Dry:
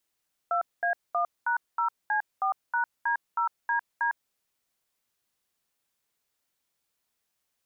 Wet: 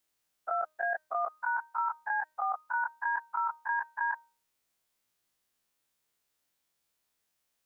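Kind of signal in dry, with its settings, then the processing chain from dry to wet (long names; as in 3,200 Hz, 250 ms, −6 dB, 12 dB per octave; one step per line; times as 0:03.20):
touch tones "2A1#0C4#D0DD", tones 104 ms, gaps 214 ms, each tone −26 dBFS
every bin's largest magnitude spread in time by 60 ms
tuned comb filter 310 Hz, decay 0.39 s, harmonics all, mix 40%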